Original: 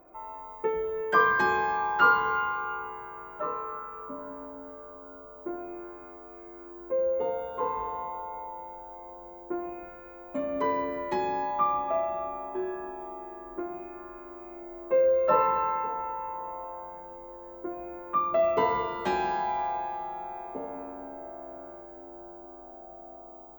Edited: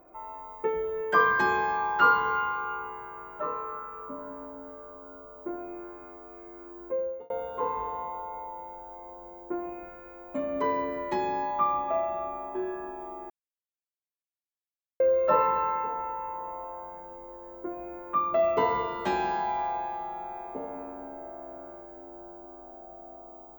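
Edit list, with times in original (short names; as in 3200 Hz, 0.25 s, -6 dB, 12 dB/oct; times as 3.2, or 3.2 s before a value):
6.86–7.3 fade out linear
13.3–15 mute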